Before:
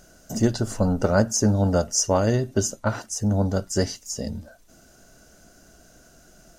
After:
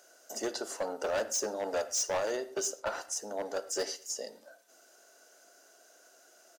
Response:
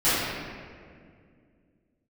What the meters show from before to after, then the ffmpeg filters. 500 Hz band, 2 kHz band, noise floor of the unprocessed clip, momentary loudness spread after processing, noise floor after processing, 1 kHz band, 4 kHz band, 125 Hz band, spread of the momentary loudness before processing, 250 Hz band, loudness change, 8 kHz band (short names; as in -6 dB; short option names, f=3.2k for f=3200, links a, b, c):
-8.5 dB, -6.5 dB, -54 dBFS, 7 LU, -61 dBFS, -8.0 dB, -6.0 dB, -36.0 dB, 11 LU, -20.5 dB, -10.5 dB, -7.0 dB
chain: -filter_complex "[0:a]highpass=f=410:w=0.5412,highpass=f=410:w=1.3066,volume=22.5dB,asoftclip=hard,volume=-22.5dB,asplit=2[a][b];[b]adelay=106,lowpass=f=2k:p=1,volume=-23.5dB,asplit=2[c][d];[d]adelay=106,lowpass=f=2k:p=1,volume=0.51,asplit=2[e][f];[f]adelay=106,lowpass=f=2k:p=1,volume=0.51[g];[a][c][e][g]amix=inputs=4:normalize=0,asplit=2[h][i];[1:a]atrim=start_sample=2205,atrim=end_sample=6174[j];[i][j]afir=irnorm=-1:irlink=0,volume=-29.5dB[k];[h][k]amix=inputs=2:normalize=0,volume=-5dB"